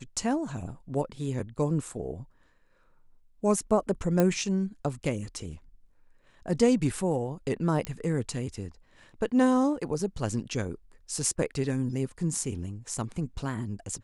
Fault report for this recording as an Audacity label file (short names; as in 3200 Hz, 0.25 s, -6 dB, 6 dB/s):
4.200000	4.200000	pop -11 dBFS
7.850000	7.850000	pop -17 dBFS